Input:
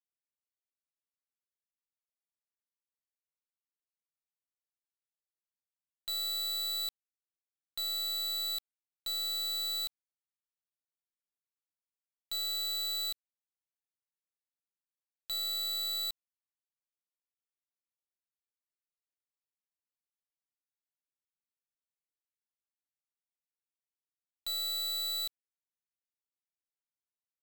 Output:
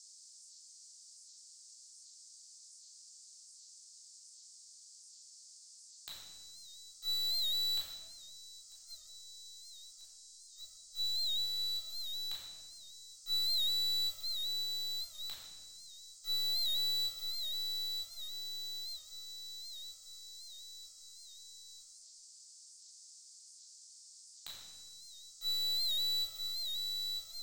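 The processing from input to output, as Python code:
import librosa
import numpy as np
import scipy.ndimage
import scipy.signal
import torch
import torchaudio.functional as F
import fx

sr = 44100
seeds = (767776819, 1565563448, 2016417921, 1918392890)

p1 = x + fx.echo_feedback(x, sr, ms=946, feedback_pct=59, wet_db=-13, dry=0)
p2 = fx.gate_flip(p1, sr, shuts_db=-45.0, range_db=-35)
p3 = fx.room_shoebox(p2, sr, seeds[0], volume_m3=730.0, walls='mixed', distance_m=3.8)
p4 = fx.dmg_noise_band(p3, sr, seeds[1], low_hz=4500.0, high_hz=8500.0, level_db=-59.0)
p5 = fx.record_warp(p4, sr, rpm=78.0, depth_cents=100.0)
y = F.gain(torch.from_numpy(p5), 2.0).numpy()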